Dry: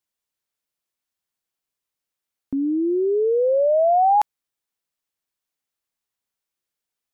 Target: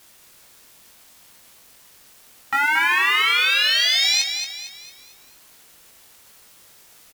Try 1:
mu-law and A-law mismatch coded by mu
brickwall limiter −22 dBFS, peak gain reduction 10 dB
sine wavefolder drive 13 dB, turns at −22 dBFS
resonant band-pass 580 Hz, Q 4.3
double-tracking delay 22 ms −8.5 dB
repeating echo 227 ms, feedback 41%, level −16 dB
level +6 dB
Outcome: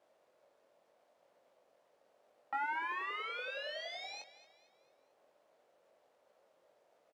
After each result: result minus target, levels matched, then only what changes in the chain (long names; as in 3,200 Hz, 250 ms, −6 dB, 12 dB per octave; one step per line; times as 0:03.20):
500 Hz band +18.0 dB; echo-to-direct −8.5 dB
remove: resonant band-pass 580 Hz, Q 4.3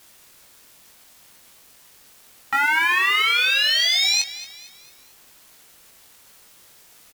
echo-to-direct −8.5 dB
change: repeating echo 227 ms, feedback 41%, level −7.5 dB